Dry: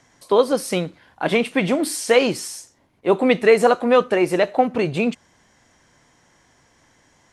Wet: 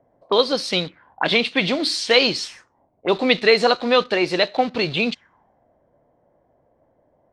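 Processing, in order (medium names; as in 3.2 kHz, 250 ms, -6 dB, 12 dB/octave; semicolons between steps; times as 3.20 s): treble shelf 2.1 kHz +7 dB; in parallel at -8 dB: bit crusher 5-bit; on the sum: touch-sensitive low-pass 590–4200 Hz up, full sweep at -15 dBFS; trim -6 dB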